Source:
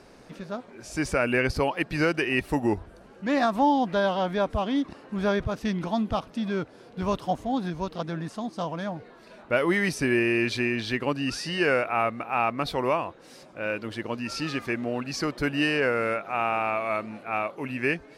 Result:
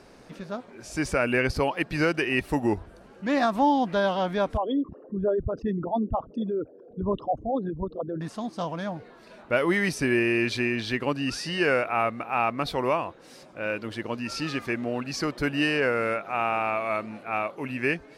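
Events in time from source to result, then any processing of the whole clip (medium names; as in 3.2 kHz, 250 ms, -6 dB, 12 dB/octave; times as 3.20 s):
4.57–8.21 s: resonances exaggerated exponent 3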